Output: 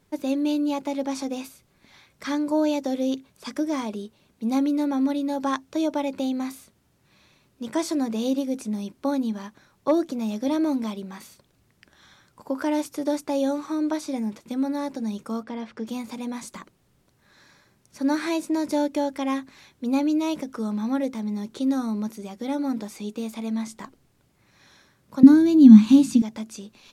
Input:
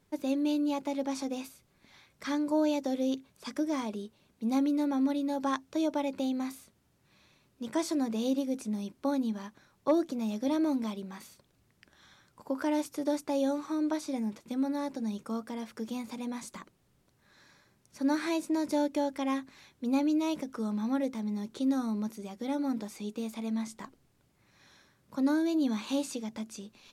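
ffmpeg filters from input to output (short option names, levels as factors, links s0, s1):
-filter_complex "[0:a]asettb=1/sr,asplit=3[s0][s1][s2];[s0]atrim=end=15.434[s3];[s1]atrim=start=15.43:end=15.87,asetpts=PTS-STARTPTS,afade=t=in:d=0.004:c=qsin,afade=t=out:st=0.436:d=0.004:c=qsin,lowpass=3900[s4];[s2]atrim=start=15.866[s5];[s3][s4]acrossfade=d=0.004:c1=hsin:c2=qsin[s6];[s6][s5]acrossfade=d=0.004:c1=qsin:c2=hsin,asettb=1/sr,asplit=3[s7][s8][s9];[s7]atrim=end=25.234[s10];[s8]atrim=start=25.23:end=26.22,asetpts=PTS-STARTPTS,afade=t=in:d=0.004:c=qsin,afade=t=out:st=0.986:d=0.004:c=qsin,lowshelf=f=320:t=q:w=3:g=12.5[s11];[s9]atrim=start=26.216[s12];[s10][s11]acrossfade=d=0.004:c1=hsin:c2=qsin[s13];[s13][s12]acrossfade=d=0.004:c1=qsin:c2=hsin,volume=1.78"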